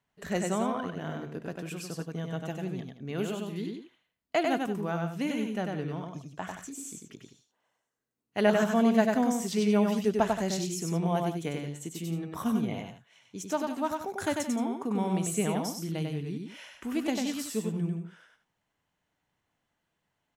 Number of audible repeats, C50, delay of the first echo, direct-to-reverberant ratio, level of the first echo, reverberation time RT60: 2, none, 96 ms, none, -3.5 dB, none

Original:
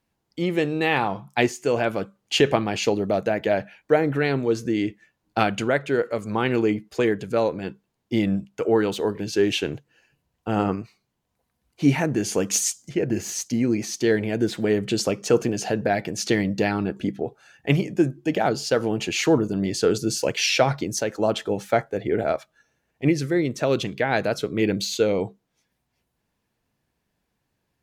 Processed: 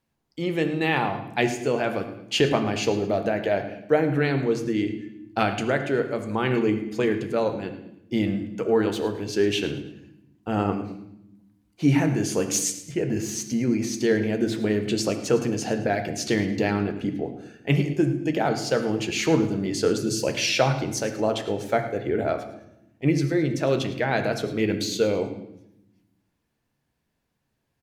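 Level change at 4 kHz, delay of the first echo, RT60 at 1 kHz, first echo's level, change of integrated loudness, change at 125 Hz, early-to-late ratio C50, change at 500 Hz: -2.0 dB, 0.108 s, 0.75 s, -15.5 dB, -1.0 dB, +0.5 dB, 9.0 dB, -1.5 dB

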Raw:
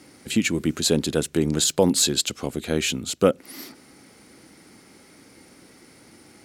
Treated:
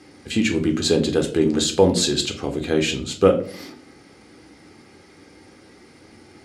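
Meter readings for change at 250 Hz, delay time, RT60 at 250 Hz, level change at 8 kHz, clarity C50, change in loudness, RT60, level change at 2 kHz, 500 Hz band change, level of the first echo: +3.0 dB, none, 0.65 s, -3.5 dB, 11.5 dB, +2.0 dB, 0.50 s, +1.5 dB, +4.5 dB, none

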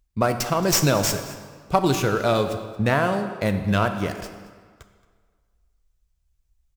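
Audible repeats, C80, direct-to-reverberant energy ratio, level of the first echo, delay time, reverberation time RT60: 1, 10.0 dB, 7.0 dB, -19.0 dB, 0.224 s, 1.7 s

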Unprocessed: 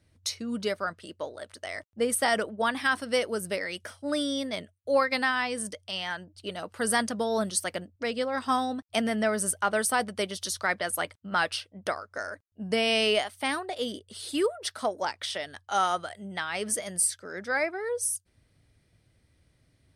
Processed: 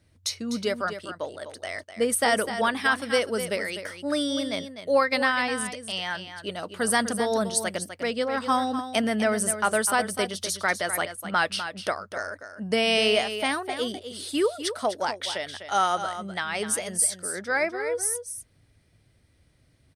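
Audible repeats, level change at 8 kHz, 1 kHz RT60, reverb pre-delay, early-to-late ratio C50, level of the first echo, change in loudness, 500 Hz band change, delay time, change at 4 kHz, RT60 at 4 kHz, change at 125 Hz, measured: 1, +3.0 dB, none, none, none, -10.0 dB, +3.0 dB, +3.0 dB, 0.251 s, +3.0 dB, none, +3.0 dB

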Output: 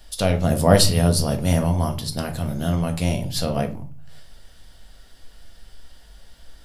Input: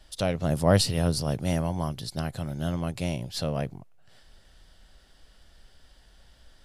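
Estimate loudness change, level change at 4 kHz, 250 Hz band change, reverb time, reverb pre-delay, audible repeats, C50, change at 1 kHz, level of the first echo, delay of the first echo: +6.5 dB, +7.0 dB, +6.5 dB, 0.45 s, 4 ms, none, 13.5 dB, +7.0 dB, none, none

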